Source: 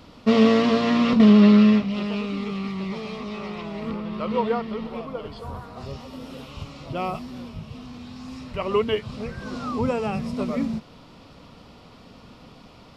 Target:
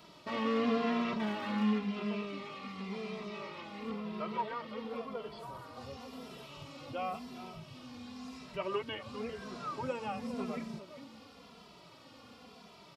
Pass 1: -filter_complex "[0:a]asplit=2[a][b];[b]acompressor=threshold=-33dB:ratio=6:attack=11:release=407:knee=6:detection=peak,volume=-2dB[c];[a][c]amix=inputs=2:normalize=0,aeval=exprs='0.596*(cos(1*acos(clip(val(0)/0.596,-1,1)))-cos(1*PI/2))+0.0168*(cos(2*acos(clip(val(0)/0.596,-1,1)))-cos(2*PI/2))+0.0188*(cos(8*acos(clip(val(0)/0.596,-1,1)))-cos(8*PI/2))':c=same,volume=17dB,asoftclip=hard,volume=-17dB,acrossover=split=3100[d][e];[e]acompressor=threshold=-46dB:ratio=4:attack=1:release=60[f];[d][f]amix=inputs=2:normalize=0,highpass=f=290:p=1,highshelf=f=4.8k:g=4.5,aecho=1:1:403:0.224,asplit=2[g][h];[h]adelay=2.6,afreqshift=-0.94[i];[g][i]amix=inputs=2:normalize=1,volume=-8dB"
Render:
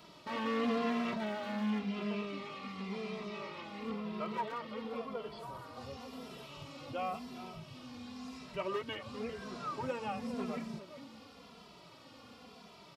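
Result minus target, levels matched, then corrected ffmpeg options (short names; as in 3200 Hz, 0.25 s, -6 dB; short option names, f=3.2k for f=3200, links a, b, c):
overloaded stage: distortion +8 dB
-filter_complex "[0:a]asplit=2[a][b];[b]acompressor=threshold=-33dB:ratio=6:attack=11:release=407:knee=6:detection=peak,volume=-2dB[c];[a][c]amix=inputs=2:normalize=0,aeval=exprs='0.596*(cos(1*acos(clip(val(0)/0.596,-1,1)))-cos(1*PI/2))+0.0168*(cos(2*acos(clip(val(0)/0.596,-1,1)))-cos(2*PI/2))+0.0188*(cos(8*acos(clip(val(0)/0.596,-1,1)))-cos(8*PI/2))':c=same,volume=11dB,asoftclip=hard,volume=-11dB,acrossover=split=3100[d][e];[e]acompressor=threshold=-46dB:ratio=4:attack=1:release=60[f];[d][f]amix=inputs=2:normalize=0,highpass=f=290:p=1,highshelf=f=4.8k:g=4.5,aecho=1:1:403:0.224,asplit=2[g][h];[h]adelay=2.6,afreqshift=-0.94[i];[g][i]amix=inputs=2:normalize=1,volume=-8dB"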